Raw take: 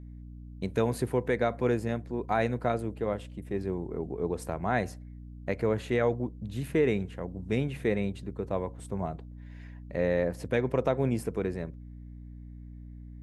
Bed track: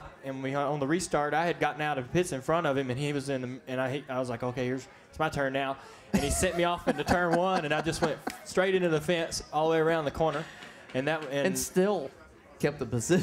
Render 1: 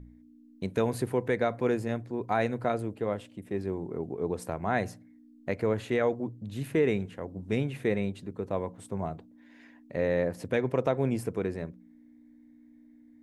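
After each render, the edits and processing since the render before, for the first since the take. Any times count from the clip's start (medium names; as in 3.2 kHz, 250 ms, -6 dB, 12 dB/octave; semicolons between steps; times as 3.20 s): de-hum 60 Hz, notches 3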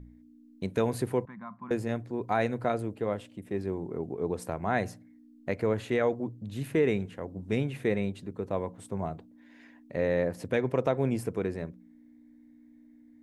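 1.25–1.71 s: two resonant band-passes 460 Hz, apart 2.4 oct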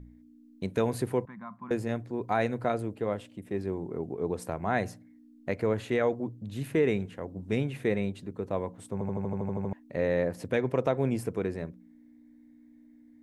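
8.93 s: stutter in place 0.08 s, 10 plays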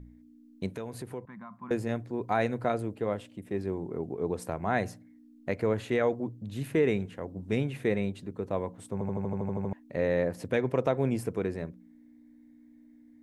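0.72–1.63 s: compression 2:1, threshold -42 dBFS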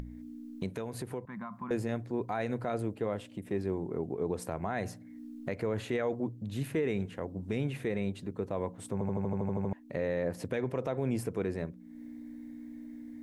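peak limiter -22 dBFS, peak gain reduction 9.5 dB; upward compressor, threshold -34 dBFS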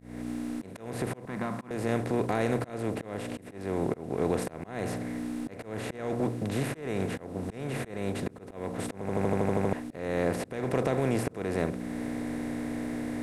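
spectral levelling over time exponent 0.4; slow attack 307 ms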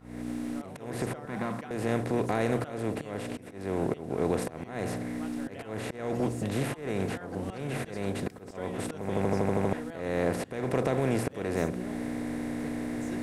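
add bed track -18 dB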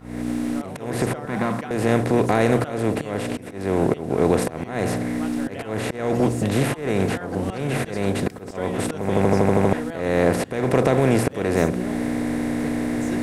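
trim +9.5 dB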